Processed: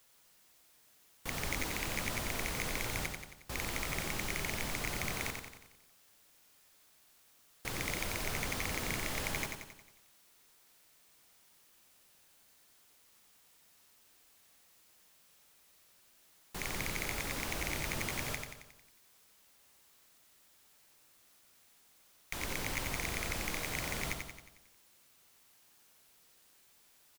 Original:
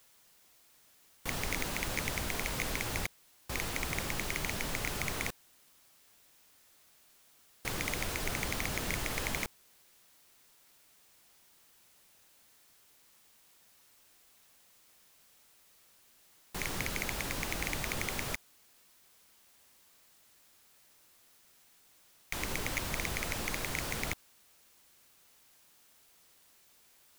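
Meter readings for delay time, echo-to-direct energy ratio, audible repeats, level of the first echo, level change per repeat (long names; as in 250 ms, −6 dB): 90 ms, −3.5 dB, 6, −5.0 dB, −5.5 dB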